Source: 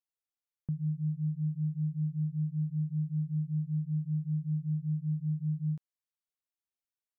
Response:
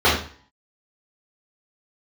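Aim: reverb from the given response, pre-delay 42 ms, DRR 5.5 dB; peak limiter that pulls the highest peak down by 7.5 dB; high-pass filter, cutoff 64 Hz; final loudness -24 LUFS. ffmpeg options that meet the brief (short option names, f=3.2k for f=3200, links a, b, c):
-filter_complex "[0:a]highpass=64,alimiter=level_in=9.5dB:limit=-24dB:level=0:latency=1,volume=-9.5dB,asplit=2[a][b];[1:a]atrim=start_sample=2205,adelay=42[c];[b][c]afir=irnorm=-1:irlink=0,volume=-29dB[d];[a][d]amix=inputs=2:normalize=0,volume=15.5dB"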